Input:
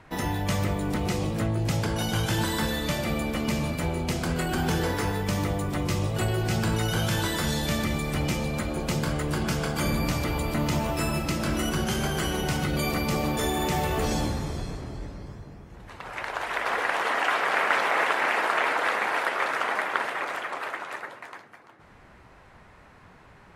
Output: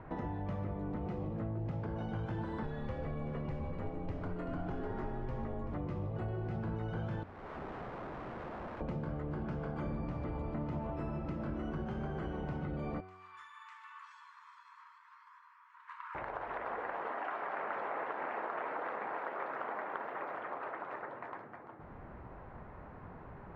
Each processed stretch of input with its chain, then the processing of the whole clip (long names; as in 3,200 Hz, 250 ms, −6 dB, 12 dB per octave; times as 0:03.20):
0:02.63–0:05.74: single-tap delay 383 ms −11 dB + frequency shifter −71 Hz
0:07.23–0:08.81: transistor ladder low-pass 590 Hz, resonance 35% + wrap-around overflow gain 37 dB
0:13.00–0:16.15: parametric band 7,800 Hz +7.5 dB 0.53 octaves + downward compressor 12 to 1, threshold −36 dBFS + linear-phase brick-wall high-pass 910 Hz
0:17.12–0:17.59: low-shelf EQ 130 Hz −10 dB + notch filter 480 Hz, Q 8.9
0:19.16–0:20.32: high-pass filter 110 Hz + steady tone 12,000 Hz −33 dBFS
whole clip: low-pass filter 1,100 Hz 12 dB per octave; hum removal 93.55 Hz, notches 29; downward compressor 3 to 1, threshold −45 dBFS; level +4 dB